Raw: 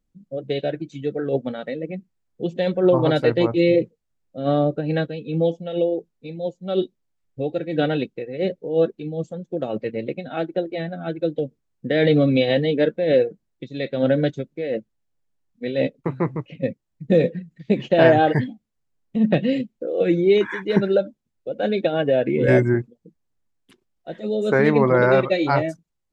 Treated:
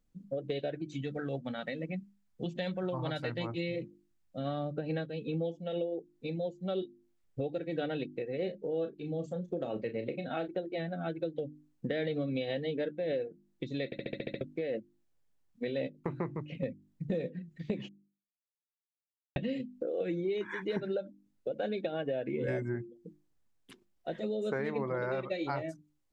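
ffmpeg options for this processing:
-filter_complex "[0:a]asettb=1/sr,asplit=3[a][b][c];[a]atrim=end=1.014[d];[b]atrim=start=1.01:end=4.75,asetpts=PTS-STARTPTS,afade=t=in:d=0.004:c=qsin,afade=t=out:st=3.736:d=0.004:c=qsin,equalizer=f=420:w=1.3:g=-11[e];[c]atrim=start=4.746[f];[d][e]acrossfade=d=0.004:c1=hsin:c2=qsin[g];[g][f]acrossfade=d=0.004:c1=qsin:c2=hsin,asettb=1/sr,asplit=3[h][i][j];[h]atrim=end=8.374[k];[i]atrim=start=8.37:end=10.48,asetpts=PTS-STARTPTS,afade=t=in:d=0.004:c=qsin,afade=t=out:st=2.106:d=0.004:c=qsin,asplit=2[l][m];[m]adelay=34,volume=-9.5dB[n];[l][n]amix=inputs=2:normalize=0,atrim=end_sample=93051[o];[j]atrim=start=10.476[p];[k][o]acrossfade=d=0.004:c1=hsin:c2=qsin[q];[q][p]acrossfade=d=0.004:c1=qsin:c2=hsin,asplit=11[r][s][t][u][v][w][x][y][z][aa][ab];[r]atrim=end=13.922[ac];[s]atrim=start=13.848:end=13.922[ad];[t]atrim=start=13.848:end=13.922[ae];[u]atrim=start=13.848:end=13.922[af];[v]atrim=start=13.848:end=13.922[ag];[w]atrim=start=13.848:end=13.922[ah];[x]atrim=start=13.848:end=13.922[ai];[y]atrim=start=13.848:end=13.922[aj];[z]atrim=start=14.408:end=17.89,asetpts=PTS-STARTPTS,afade=t=out:st=3.478:d=0.004:c=hsin[ak];[aa]atrim=start=17.89:end=19.36,asetpts=PTS-STARTPTS,volume=0[al];[ab]atrim=start=19.36,asetpts=PTS-STARTPTS,afade=t=in:d=0.004:c=hsin[am];[ac][ad]acrossfade=d=0.004:c1=hsin:c2=hsin[an];[an][ae]acrossfade=d=0.004:c1=hsin:c2=hsin[ao];[ao][af]acrossfade=d=0.004:c1=hsin:c2=hsin[ap];[ap][ag]acrossfade=d=0.004:c1=hsin:c2=hsin[aq];[aq][ah]acrossfade=d=0.004:c1=hsin:c2=hsin[ar];[ar][ai]acrossfade=d=0.004:c1=hsin:c2=hsin[as];[as][aj]acrossfade=d=0.004:c1=hsin:c2=hsin[at];[ak][al][am]concat=n=3:v=0:a=1[au];[at][au]acrossfade=d=0.004:c1=hsin:c2=hsin,bandreject=f=50:t=h:w=6,bandreject=f=100:t=h:w=6,bandreject=f=150:t=h:w=6,bandreject=f=200:t=h:w=6,bandreject=f=250:t=h:w=6,bandreject=f=300:t=h:w=6,bandreject=f=350:t=h:w=6,acompressor=threshold=-33dB:ratio=5"

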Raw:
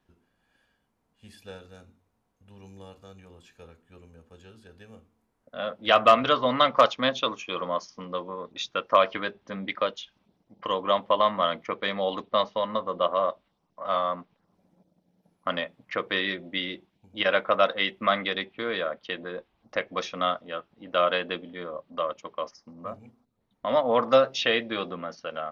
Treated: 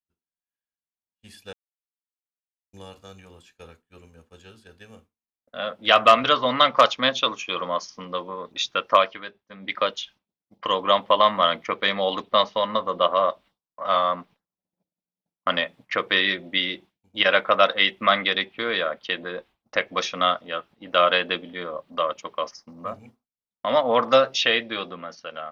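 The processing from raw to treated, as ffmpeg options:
-filter_complex "[0:a]asplit=5[a][b][c][d][e];[a]atrim=end=1.53,asetpts=PTS-STARTPTS,afade=t=out:st=1.526:d=0.004:c=hsin[f];[b]atrim=start=1.53:end=2.73,asetpts=PTS-STARTPTS,volume=0[g];[c]atrim=start=2.73:end=9.14,asetpts=PTS-STARTPTS,afade=t=in:d=0.004:c=hsin,afade=t=out:st=6.22:d=0.19:silence=0.298538[h];[d]atrim=start=9.14:end=9.59,asetpts=PTS-STARTPTS,volume=-10.5dB[i];[e]atrim=start=9.59,asetpts=PTS-STARTPTS,afade=t=in:d=0.19:silence=0.298538[j];[f][g][h][i][j]concat=n=5:v=0:a=1,agate=range=-33dB:threshold=-48dB:ratio=3:detection=peak,tiltshelf=f=1.2k:g=-3.5,dynaudnorm=f=220:g=11:m=6dB"

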